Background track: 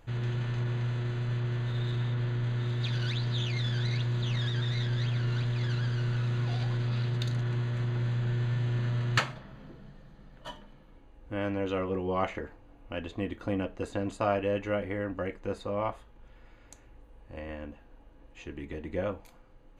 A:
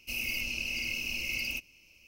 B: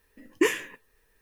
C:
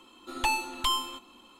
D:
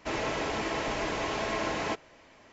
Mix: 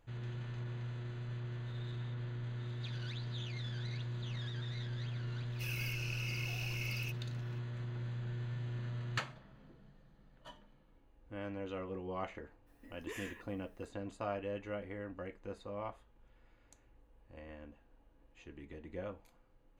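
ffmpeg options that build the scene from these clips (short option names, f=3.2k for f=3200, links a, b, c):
-filter_complex "[0:a]volume=-11dB[a];[2:a]acompressor=threshold=-34dB:ratio=6:attack=3.2:release=140:knee=1:detection=peak[b];[1:a]atrim=end=2.07,asetpts=PTS-STARTPTS,volume=-9dB,afade=t=in:d=0.004:c=hsin,afade=t=out:st=2.066:d=0.004:c=hsin,adelay=5520[c];[b]atrim=end=1.21,asetpts=PTS-STARTPTS,volume=-7dB,afade=t=in:d=0.02,afade=t=out:st=1.19:d=0.02,adelay=12660[d];[a][c][d]amix=inputs=3:normalize=0"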